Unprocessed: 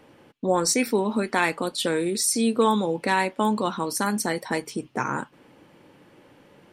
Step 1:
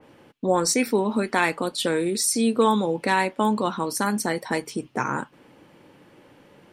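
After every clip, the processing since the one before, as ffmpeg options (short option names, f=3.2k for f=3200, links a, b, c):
-af "adynamicequalizer=threshold=0.0178:dfrequency=2600:dqfactor=0.7:tfrequency=2600:tqfactor=0.7:attack=5:release=100:ratio=0.375:range=1.5:mode=cutabove:tftype=highshelf,volume=1dB"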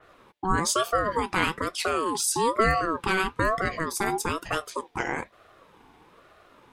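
-af "aeval=exprs='val(0)*sin(2*PI*750*n/s+750*0.25/1.1*sin(2*PI*1.1*n/s))':c=same"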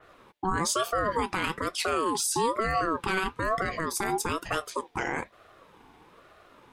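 -af "alimiter=limit=-17dB:level=0:latency=1:release=11"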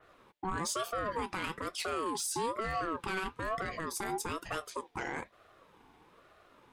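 -af "asoftclip=type=tanh:threshold=-19dB,volume=-6dB"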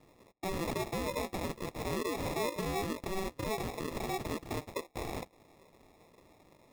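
-af "acrusher=samples=29:mix=1:aa=0.000001"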